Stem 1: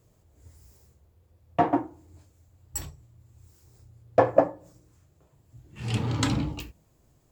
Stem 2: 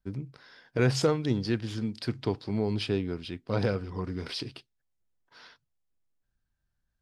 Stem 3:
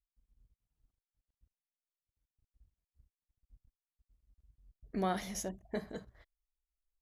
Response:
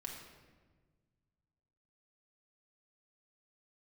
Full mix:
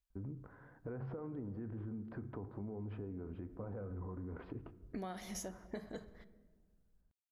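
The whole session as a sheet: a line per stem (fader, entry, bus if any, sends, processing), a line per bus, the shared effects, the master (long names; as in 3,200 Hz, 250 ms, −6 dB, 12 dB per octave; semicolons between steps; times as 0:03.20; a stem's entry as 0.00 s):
muted
−2.0 dB, 0.10 s, bus A, send −12 dB, low-pass filter 1,300 Hz 24 dB per octave; parametric band 140 Hz −6.5 dB 0.51 octaves; brickwall limiter −23.5 dBFS, peak gain reduction 10.5 dB
−0.5 dB, 0.00 s, no bus, send −10 dB, no processing
bus A: 0.0 dB, low-shelf EQ 100 Hz +10 dB; brickwall limiter −35 dBFS, peak gain reduction 12.5 dB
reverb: on, RT60 1.4 s, pre-delay 4 ms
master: downward compressor 12 to 1, threshold −40 dBFS, peak gain reduction 13 dB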